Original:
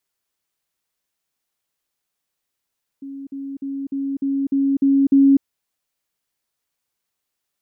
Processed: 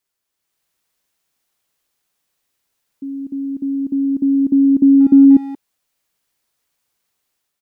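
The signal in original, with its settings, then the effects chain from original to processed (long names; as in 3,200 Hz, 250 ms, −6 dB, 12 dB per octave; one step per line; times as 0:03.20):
level staircase 275 Hz −30 dBFS, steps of 3 dB, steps 8, 0.25 s 0.05 s
automatic gain control gain up to 7 dB
far-end echo of a speakerphone 180 ms, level −13 dB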